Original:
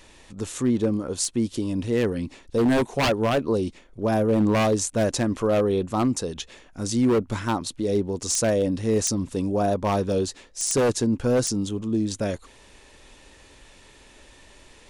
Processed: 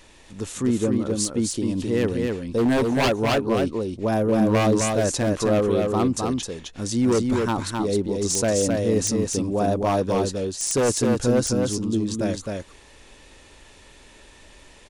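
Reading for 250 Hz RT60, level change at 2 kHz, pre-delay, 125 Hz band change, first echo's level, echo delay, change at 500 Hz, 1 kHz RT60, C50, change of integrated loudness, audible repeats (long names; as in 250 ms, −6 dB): no reverb audible, +1.5 dB, no reverb audible, +1.5 dB, −3.5 dB, 261 ms, +1.5 dB, no reverb audible, no reverb audible, +1.5 dB, 1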